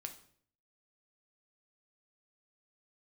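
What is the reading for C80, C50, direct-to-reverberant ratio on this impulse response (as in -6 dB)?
16.0 dB, 11.5 dB, 5.0 dB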